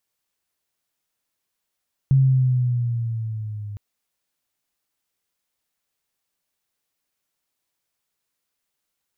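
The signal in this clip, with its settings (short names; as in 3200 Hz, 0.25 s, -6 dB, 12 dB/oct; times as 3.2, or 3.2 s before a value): gliding synth tone sine, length 1.66 s, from 136 Hz, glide -5 st, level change -18.5 dB, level -11.5 dB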